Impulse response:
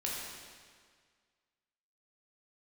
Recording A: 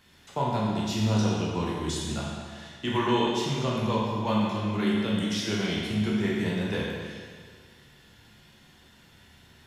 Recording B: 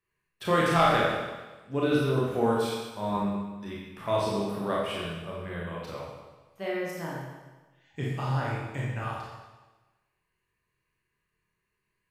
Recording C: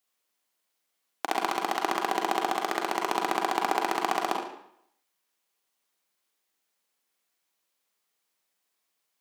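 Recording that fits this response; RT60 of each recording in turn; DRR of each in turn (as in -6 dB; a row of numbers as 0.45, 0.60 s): A; 1.8, 1.2, 0.70 s; -5.0, -5.5, 0.0 dB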